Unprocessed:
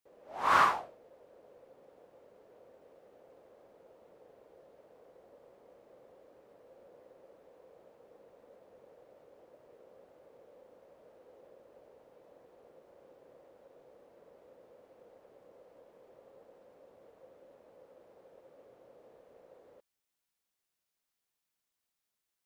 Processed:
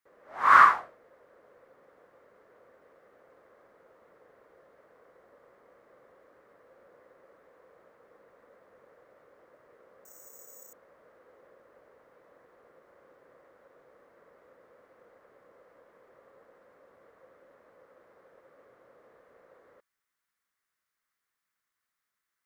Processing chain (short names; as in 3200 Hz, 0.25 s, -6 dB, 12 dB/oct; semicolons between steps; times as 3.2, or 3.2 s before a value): band shelf 1500 Hz +11 dB 1.2 oct; 10.05–10.73 careless resampling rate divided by 6×, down filtered, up zero stuff; gain -1.5 dB